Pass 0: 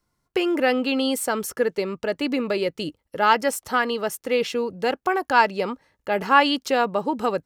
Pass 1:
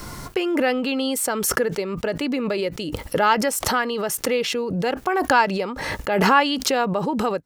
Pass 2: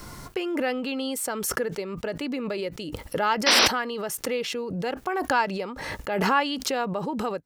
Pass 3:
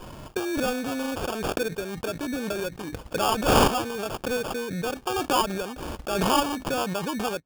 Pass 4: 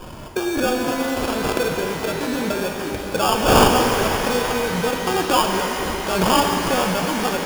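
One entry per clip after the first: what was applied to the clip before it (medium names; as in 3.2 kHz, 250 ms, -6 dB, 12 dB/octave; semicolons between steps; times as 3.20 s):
swell ahead of each attack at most 29 dB/s; trim -1 dB
painted sound noise, 3.46–3.68 s, 200–6000 Hz -12 dBFS; trim -6 dB
sample-rate reducer 2 kHz, jitter 0%
pitch-shifted reverb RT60 4 s, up +12 st, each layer -8 dB, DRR 2 dB; trim +4.5 dB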